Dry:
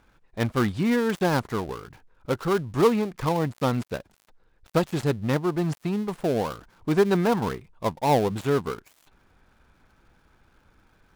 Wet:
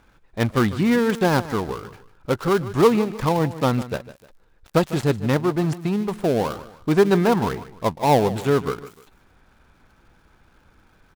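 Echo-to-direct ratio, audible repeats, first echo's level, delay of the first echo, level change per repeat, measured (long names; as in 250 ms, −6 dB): −15.0 dB, 2, −15.5 dB, 151 ms, −9.0 dB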